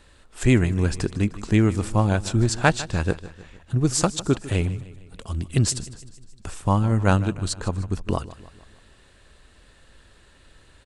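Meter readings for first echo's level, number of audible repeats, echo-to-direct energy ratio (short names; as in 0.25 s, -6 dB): -17.0 dB, 4, -15.5 dB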